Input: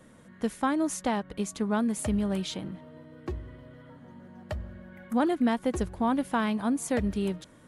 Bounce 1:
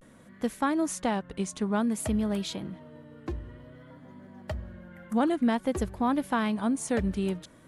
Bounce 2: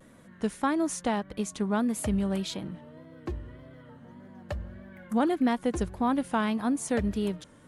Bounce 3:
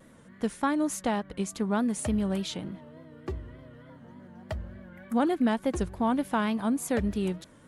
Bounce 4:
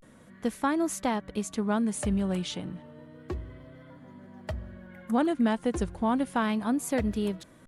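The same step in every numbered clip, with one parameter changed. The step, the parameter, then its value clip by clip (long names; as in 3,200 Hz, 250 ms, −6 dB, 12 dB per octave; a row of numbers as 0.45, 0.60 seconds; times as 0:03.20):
pitch vibrato, speed: 0.54, 1.7, 3.4, 0.31 Hertz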